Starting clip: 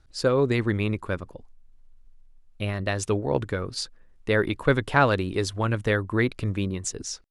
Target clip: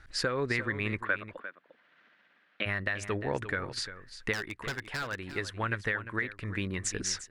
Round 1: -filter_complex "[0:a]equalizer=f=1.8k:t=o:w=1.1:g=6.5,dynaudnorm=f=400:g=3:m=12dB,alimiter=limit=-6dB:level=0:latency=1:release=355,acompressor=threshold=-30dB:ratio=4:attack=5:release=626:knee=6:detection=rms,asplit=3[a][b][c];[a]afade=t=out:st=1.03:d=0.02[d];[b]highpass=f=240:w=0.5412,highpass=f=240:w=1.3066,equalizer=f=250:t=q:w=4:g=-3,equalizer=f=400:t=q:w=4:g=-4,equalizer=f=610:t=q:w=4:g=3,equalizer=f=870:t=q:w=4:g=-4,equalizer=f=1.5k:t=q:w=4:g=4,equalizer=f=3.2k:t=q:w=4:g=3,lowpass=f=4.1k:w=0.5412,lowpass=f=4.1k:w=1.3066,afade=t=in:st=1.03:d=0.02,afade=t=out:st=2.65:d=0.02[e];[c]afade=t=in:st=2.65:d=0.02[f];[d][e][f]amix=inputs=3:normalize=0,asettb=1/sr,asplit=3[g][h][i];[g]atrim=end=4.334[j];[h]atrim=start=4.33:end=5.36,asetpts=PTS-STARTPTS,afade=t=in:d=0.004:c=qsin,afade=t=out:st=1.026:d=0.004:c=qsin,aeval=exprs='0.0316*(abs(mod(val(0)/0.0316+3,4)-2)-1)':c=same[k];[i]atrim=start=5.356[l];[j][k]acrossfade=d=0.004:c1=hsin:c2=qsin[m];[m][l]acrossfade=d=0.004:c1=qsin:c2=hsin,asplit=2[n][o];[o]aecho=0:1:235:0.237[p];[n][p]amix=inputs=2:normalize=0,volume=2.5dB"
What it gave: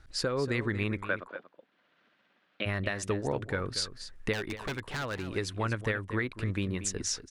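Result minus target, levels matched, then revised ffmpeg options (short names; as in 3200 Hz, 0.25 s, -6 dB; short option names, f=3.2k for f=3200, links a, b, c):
echo 0.115 s early; 2000 Hz band -3.5 dB
-filter_complex "[0:a]equalizer=f=1.8k:t=o:w=1.1:g=16,dynaudnorm=f=400:g=3:m=12dB,alimiter=limit=-6dB:level=0:latency=1:release=355,acompressor=threshold=-30dB:ratio=4:attack=5:release=626:knee=6:detection=rms,asplit=3[a][b][c];[a]afade=t=out:st=1.03:d=0.02[d];[b]highpass=f=240:w=0.5412,highpass=f=240:w=1.3066,equalizer=f=250:t=q:w=4:g=-3,equalizer=f=400:t=q:w=4:g=-4,equalizer=f=610:t=q:w=4:g=3,equalizer=f=870:t=q:w=4:g=-4,equalizer=f=1.5k:t=q:w=4:g=4,equalizer=f=3.2k:t=q:w=4:g=3,lowpass=f=4.1k:w=0.5412,lowpass=f=4.1k:w=1.3066,afade=t=in:st=1.03:d=0.02,afade=t=out:st=2.65:d=0.02[e];[c]afade=t=in:st=2.65:d=0.02[f];[d][e][f]amix=inputs=3:normalize=0,asettb=1/sr,asplit=3[g][h][i];[g]atrim=end=4.334[j];[h]atrim=start=4.33:end=5.36,asetpts=PTS-STARTPTS,afade=t=in:d=0.004:c=qsin,afade=t=out:st=1.026:d=0.004:c=qsin,aeval=exprs='0.0316*(abs(mod(val(0)/0.0316+3,4)-2)-1)':c=same[k];[i]atrim=start=5.356[l];[j][k]acrossfade=d=0.004:c1=hsin:c2=qsin[m];[m][l]acrossfade=d=0.004:c1=qsin:c2=hsin,asplit=2[n][o];[o]aecho=0:1:350:0.237[p];[n][p]amix=inputs=2:normalize=0,volume=2.5dB"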